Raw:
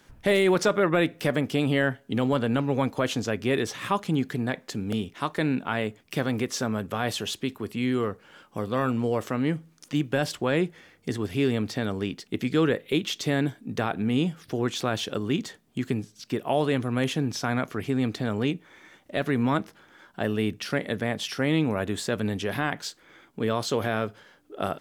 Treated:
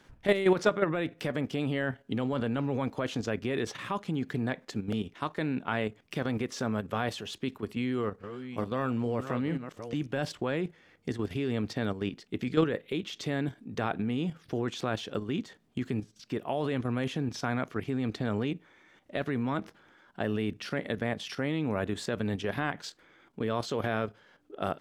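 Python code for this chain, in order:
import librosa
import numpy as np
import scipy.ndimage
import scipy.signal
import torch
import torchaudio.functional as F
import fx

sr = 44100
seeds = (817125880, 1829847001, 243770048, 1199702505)

y = fx.reverse_delay(x, sr, ms=442, wet_db=-8, at=(7.73, 10.07))
y = fx.high_shelf(y, sr, hz=7600.0, db=-11.5)
y = fx.level_steps(y, sr, step_db=10)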